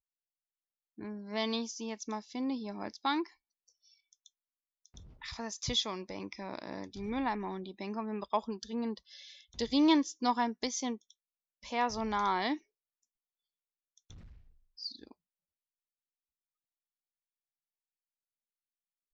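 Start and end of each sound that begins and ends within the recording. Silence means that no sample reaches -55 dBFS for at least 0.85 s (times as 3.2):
0.98–12.59
13.98–15.12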